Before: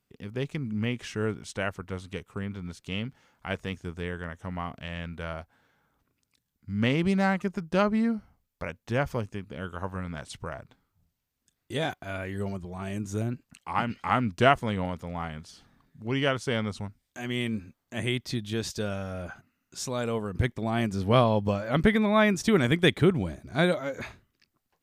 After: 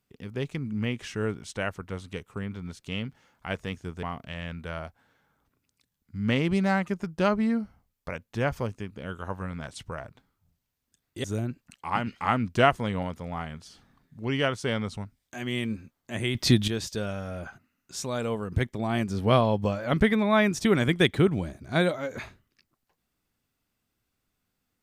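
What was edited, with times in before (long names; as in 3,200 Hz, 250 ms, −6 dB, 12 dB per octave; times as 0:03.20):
0:04.03–0:04.57: remove
0:11.78–0:13.07: remove
0:18.18–0:18.51: clip gain +11.5 dB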